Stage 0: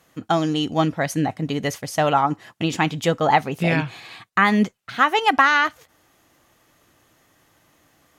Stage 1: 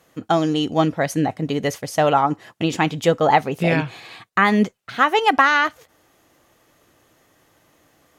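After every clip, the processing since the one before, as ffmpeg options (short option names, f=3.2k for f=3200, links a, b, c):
-af "equalizer=f=470:w=1.3:g=4.5"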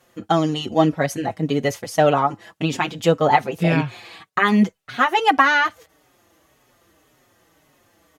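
-filter_complex "[0:a]asplit=2[a][b];[b]adelay=5.1,afreqshift=-1.8[c];[a][c]amix=inputs=2:normalize=1,volume=2.5dB"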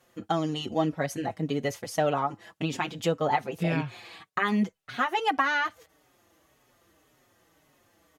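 -af "acompressor=threshold=-23dB:ratio=1.5,volume=-5.5dB"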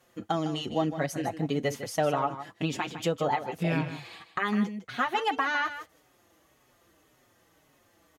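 -filter_complex "[0:a]alimiter=limit=-16dB:level=0:latency=1:release=416,asplit=2[a][b];[b]aecho=0:1:155:0.266[c];[a][c]amix=inputs=2:normalize=0"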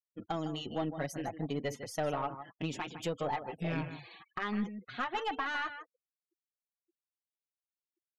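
-af "afftfilt=real='re*gte(hypot(re,im),0.00562)':imag='im*gte(hypot(re,im),0.00562)':win_size=1024:overlap=0.75,aeval=exprs='(tanh(8.91*val(0)+0.3)-tanh(0.3))/8.91':c=same,volume=-5.5dB"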